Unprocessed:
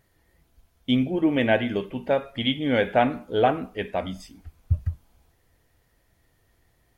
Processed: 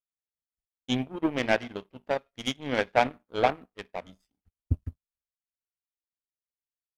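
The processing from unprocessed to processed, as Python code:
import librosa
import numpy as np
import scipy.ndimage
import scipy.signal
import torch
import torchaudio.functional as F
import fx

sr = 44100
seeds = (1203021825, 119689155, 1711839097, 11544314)

y = fx.power_curve(x, sr, exponent=2.0)
y = F.gain(torch.from_numpy(y), 2.5).numpy()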